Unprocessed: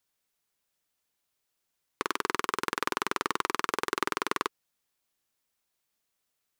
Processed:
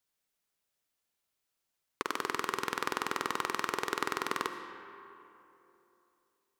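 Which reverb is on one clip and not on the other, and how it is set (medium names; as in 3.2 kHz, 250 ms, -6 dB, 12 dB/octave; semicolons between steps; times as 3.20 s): algorithmic reverb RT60 3 s, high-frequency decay 0.55×, pre-delay 35 ms, DRR 7.5 dB; trim -3.5 dB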